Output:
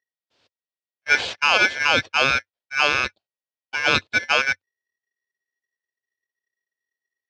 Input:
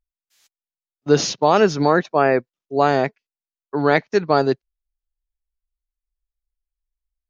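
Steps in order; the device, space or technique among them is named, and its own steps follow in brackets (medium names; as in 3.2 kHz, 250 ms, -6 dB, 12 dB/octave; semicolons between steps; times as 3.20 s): ring modulator pedal into a guitar cabinet (polarity switched at an audio rate 1.9 kHz; cabinet simulation 85–4500 Hz, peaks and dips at 93 Hz +3 dB, 170 Hz -6 dB, 540 Hz +6 dB, 1.2 kHz -6 dB, 2 kHz -7 dB)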